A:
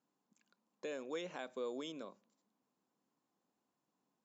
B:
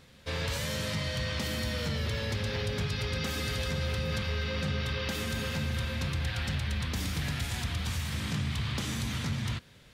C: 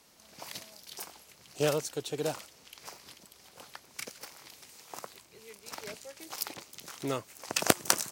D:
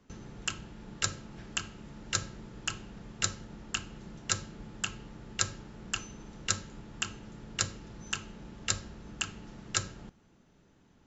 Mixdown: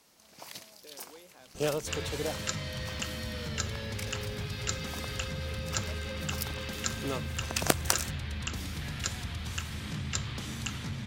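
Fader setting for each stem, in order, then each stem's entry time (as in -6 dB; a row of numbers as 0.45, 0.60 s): -11.0, -5.0, -2.0, -4.0 dB; 0.00, 1.60, 0.00, 1.45 s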